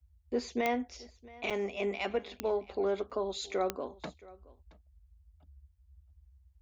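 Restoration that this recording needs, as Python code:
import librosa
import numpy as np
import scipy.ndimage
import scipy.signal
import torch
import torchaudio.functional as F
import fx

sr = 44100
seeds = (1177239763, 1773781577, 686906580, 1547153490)

y = fx.fix_declick_ar(x, sr, threshold=10.0)
y = fx.fix_interpolate(y, sr, at_s=(1.5, 3.1), length_ms=6.5)
y = fx.noise_reduce(y, sr, print_start_s=5.67, print_end_s=6.17, reduce_db=16.0)
y = fx.fix_echo_inverse(y, sr, delay_ms=672, level_db=-21.5)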